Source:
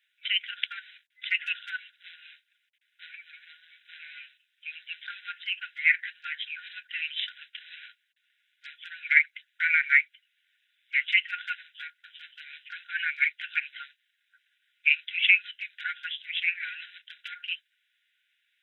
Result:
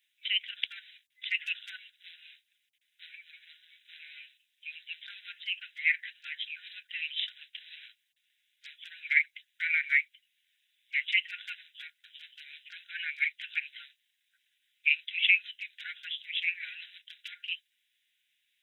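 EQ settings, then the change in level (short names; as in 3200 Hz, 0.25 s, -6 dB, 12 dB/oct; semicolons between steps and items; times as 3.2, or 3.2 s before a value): tone controls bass +8 dB, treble +9 dB; bell 1400 Hz -13 dB 0.44 oct; -3.5 dB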